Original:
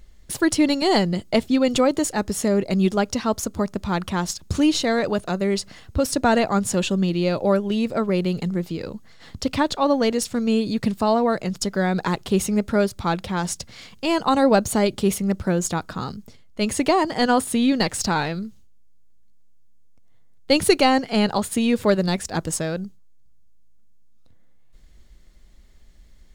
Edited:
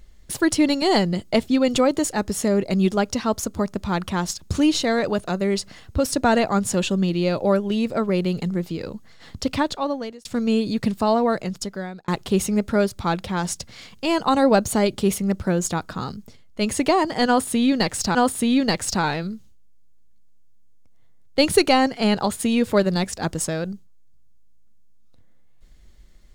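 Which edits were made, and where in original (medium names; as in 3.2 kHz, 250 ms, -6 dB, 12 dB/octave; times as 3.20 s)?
9.53–10.25 s: fade out
11.34–12.08 s: fade out
17.27–18.15 s: loop, 2 plays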